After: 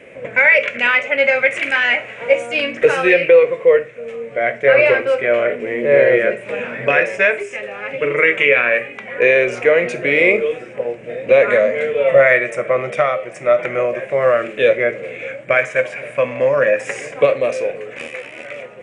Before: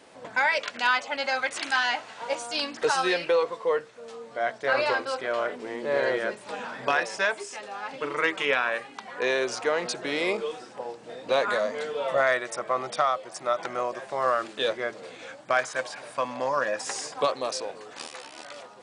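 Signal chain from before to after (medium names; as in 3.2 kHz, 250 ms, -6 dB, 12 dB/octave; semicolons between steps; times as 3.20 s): FFT filter 150 Hz 0 dB, 290 Hz -7 dB, 550 Hz +2 dB, 860 Hz -18 dB, 1.5 kHz -8 dB, 2.3 kHz +5 dB, 4.4 kHz -27 dB, 6.8 kHz -17 dB; reverberation RT60 0.30 s, pre-delay 6 ms, DRR 10.5 dB; loudness maximiser +15.5 dB; trim -1 dB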